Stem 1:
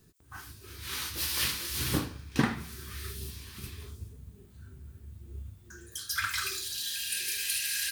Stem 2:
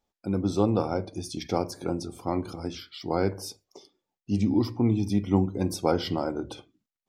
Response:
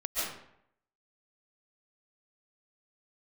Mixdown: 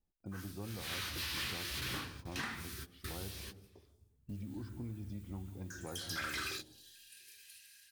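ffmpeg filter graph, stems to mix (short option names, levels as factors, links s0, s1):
-filter_complex "[0:a]dynaudnorm=f=260:g=5:m=2.51,volume=0.501[s0];[1:a]aemphasis=mode=reproduction:type=riaa,volume=0.141,asplit=3[s1][s2][s3];[s2]volume=0.106[s4];[s3]apad=whole_len=349000[s5];[s0][s5]sidechaingate=range=0.0501:threshold=0.00224:ratio=16:detection=peak[s6];[2:a]atrim=start_sample=2205[s7];[s4][s7]afir=irnorm=-1:irlink=0[s8];[s6][s1][s8]amix=inputs=3:normalize=0,acrossover=split=1100|4200[s9][s10][s11];[s9]acompressor=threshold=0.00794:ratio=4[s12];[s10]acompressor=threshold=0.0178:ratio=4[s13];[s11]acompressor=threshold=0.00447:ratio=4[s14];[s12][s13][s14]amix=inputs=3:normalize=0,asoftclip=type=tanh:threshold=0.0211"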